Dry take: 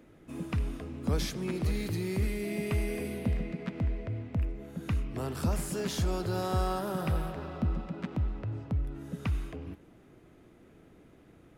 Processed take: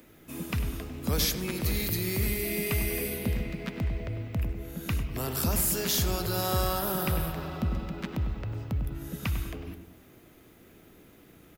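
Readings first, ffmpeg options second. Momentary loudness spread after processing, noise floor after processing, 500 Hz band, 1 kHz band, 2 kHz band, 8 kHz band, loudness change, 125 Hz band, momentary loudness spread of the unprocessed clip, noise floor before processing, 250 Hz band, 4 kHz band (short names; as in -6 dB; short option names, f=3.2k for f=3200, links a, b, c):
9 LU, -56 dBFS, +1.5 dB, +2.5 dB, +6.0 dB, +11.5 dB, +3.5 dB, +1.0 dB, 7 LU, -58 dBFS, +0.5 dB, +9.0 dB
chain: -filter_complex "[0:a]highshelf=f=2.1k:g=11.5,aexciter=amount=5.2:drive=2.7:freq=12k,asplit=2[a][b];[b]adelay=99,lowpass=f=1.4k:p=1,volume=-7dB,asplit=2[c][d];[d]adelay=99,lowpass=f=1.4k:p=1,volume=0.48,asplit=2[e][f];[f]adelay=99,lowpass=f=1.4k:p=1,volume=0.48,asplit=2[g][h];[h]adelay=99,lowpass=f=1.4k:p=1,volume=0.48,asplit=2[i][j];[j]adelay=99,lowpass=f=1.4k:p=1,volume=0.48,asplit=2[k][l];[l]adelay=99,lowpass=f=1.4k:p=1,volume=0.48[m];[c][e][g][i][k][m]amix=inputs=6:normalize=0[n];[a][n]amix=inputs=2:normalize=0"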